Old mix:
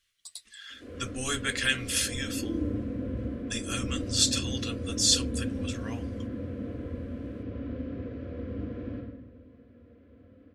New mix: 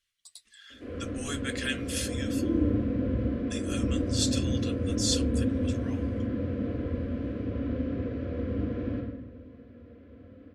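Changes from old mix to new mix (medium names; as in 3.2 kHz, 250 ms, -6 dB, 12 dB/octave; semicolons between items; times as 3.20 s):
speech -6.0 dB; background +5.0 dB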